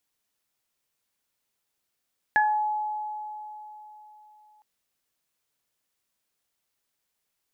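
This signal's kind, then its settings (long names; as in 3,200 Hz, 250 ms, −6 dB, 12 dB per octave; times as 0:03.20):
harmonic partials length 2.26 s, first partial 849 Hz, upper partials 3 dB, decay 3.64 s, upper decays 0.32 s, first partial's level −19 dB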